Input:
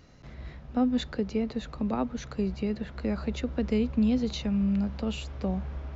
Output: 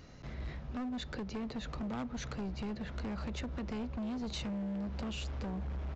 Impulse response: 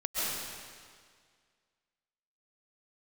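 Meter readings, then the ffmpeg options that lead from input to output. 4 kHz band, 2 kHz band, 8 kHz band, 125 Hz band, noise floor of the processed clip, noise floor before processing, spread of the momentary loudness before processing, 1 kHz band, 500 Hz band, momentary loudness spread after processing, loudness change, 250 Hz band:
−4.5 dB, −4.0 dB, can't be measured, −6.5 dB, −48 dBFS, −48 dBFS, 8 LU, −6.5 dB, −11.5 dB, 3 LU, −10.0 dB, −11.0 dB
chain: -af "acompressor=threshold=-32dB:ratio=8,aresample=16000,asoftclip=type=hard:threshold=-37dB,aresample=44100,volume=1.5dB"

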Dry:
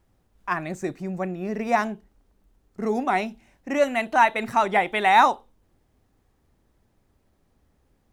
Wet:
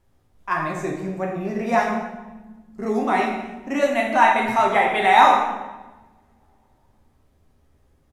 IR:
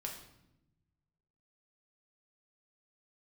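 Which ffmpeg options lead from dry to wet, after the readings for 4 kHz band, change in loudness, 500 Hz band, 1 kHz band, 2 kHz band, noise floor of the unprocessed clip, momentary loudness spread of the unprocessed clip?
+3.5 dB, +3.0 dB, +3.0 dB, +3.5 dB, +3.0 dB, −67 dBFS, 14 LU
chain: -filter_complex "[0:a]asplit=2[link_01][link_02];[link_02]adelay=13,volume=-12dB[link_03];[link_01][link_03]amix=inputs=2:normalize=0[link_04];[1:a]atrim=start_sample=2205,asetrate=29547,aresample=44100[link_05];[link_04][link_05]afir=irnorm=-1:irlink=0,volume=1.5dB"

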